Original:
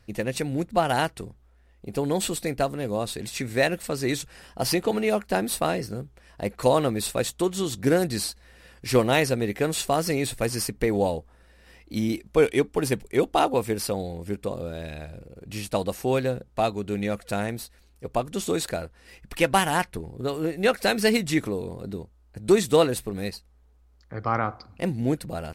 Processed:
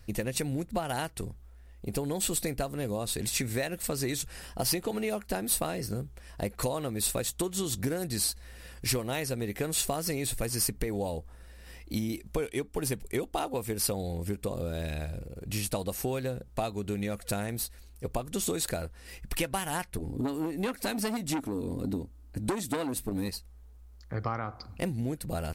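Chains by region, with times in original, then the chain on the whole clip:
19.98–23.29 s: peaking EQ 270 Hz +15 dB 0.37 oct + transformer saturation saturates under 1.3 kHz
whole clip: bass shelf 87 Hz +10 dB; compression 10:1, threshold -28 dBFS; treble shelf 7 kHz +11 dB

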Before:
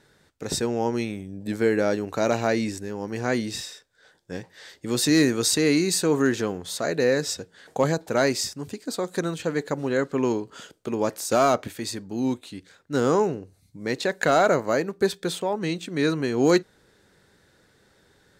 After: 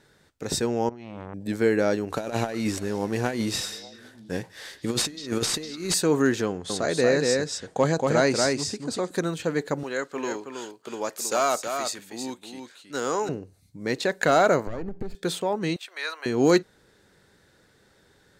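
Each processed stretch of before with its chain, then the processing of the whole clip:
0.89–1.34 s: distance through air 160 m + compressor with a negative ratio -36 dBFS + transformer saturation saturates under 800 Hz
2.10–5.94 s: CVSD coder 64 kbps + compressor with a negative ratio -27 dBFS, ratio -0.5 + repeats whose band climbs or falls 199 ms, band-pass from 4.1 kHz, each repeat -1.4 oct, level -11.5 dB
6.46–9.11 s: low-pass 9.9 kHz 24 dB/octave + delay 235 ms -3 dB
9.83–13.29 s: high-pass 840 Hz 6 dB/octave + dynamic bell 7 kHz, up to +5 dB, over -54 dBFS, Q 5.4 + delay 321 ms -6.5 dB
14.67–15.15 s: comb filter that takes the minimum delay 0.42 ms + tilt EQ -3.5 dB/octave + compression 10:1, threshold -27 dBFS
15.76–16.26 s: inverse Chebyshev high-pass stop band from 160 Hz, stop band 70 dB + peaking EQ 7.1 kHz -7 dB 0.74 oct
whole clip: none

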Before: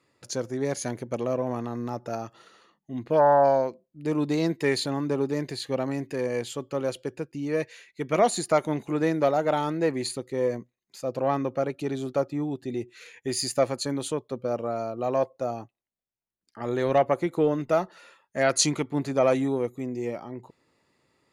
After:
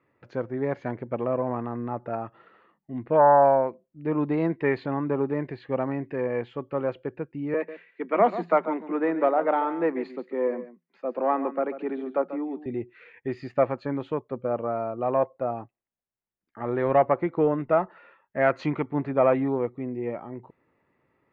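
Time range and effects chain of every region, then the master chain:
7.54–12.66 s: Chebyshev high-pass 170 Hz, order 10 + delay 140 ms -13 dB
whole clip: low-pass 2.3 kHz 24 dB/octave; dynamic bell 1 kHz, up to +4 dB, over -39 dBFS, Q 1.5

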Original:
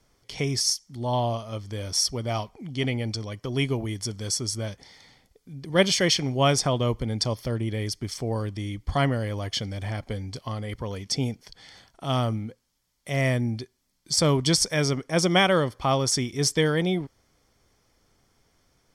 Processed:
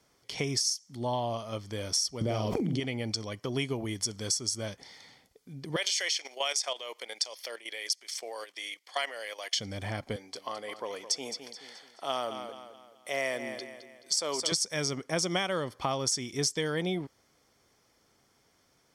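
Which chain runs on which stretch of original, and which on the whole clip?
2.21–2.80 s: resonant low shelf 620 Hz +7.5 dB, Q 1.5 + doubling 46 ms -3.5 dB + level flattener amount 100%
5.76–9.59 s: high-pass 520 Hz 24 dB/octave + resonant high shelf 1.6 kHz +6 dB, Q 1.5 + level held to a coarse grid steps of 13 dB
10.16–14.52 s: Chebyshev high-pass 500 Hz + feedback delay 214 ms, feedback 42%, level -11.5 dB
whole clip: high-pass 200 Hz 6 dB/octave; dynamic bell 6.7 kHz, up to +7 dB, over -40 dBFS, Q 0.99; compression 6:1, threshold -27 dBFS

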